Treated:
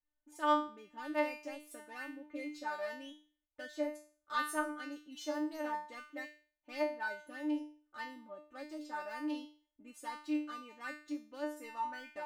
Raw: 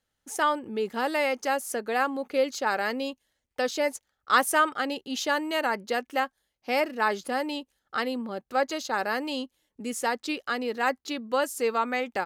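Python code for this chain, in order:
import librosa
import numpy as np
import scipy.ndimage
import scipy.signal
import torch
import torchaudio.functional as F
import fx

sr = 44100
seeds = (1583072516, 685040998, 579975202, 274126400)

y = fx.wiener(x, sr, points=9)
y = fx.low_shelf(y, sr, hz=110.0, db=12.0)
y = fx.comb_fb(y, sr, f0_hz=300.0, decay_s=0.41, harmonics='all', damping=0.0, mix_pct=100)
y = y * librosa.db_to_amplitude(2.0)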